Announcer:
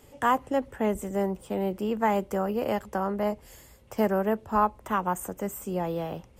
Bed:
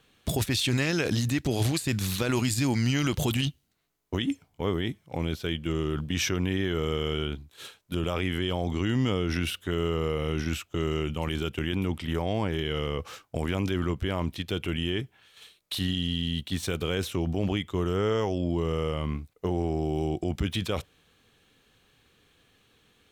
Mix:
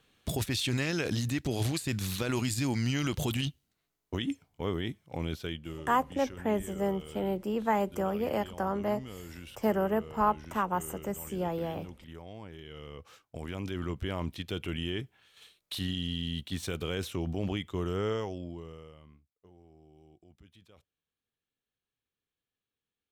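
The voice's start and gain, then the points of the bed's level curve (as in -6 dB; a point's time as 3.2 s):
5.65 s, -3.0 dB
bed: 5.41 s -4.5 dB
5.96 s -17.5 dB
12.59 s -17.5 dB
14.05 s -5 dB
18.11 s -5 dB
19.27 s -30 dB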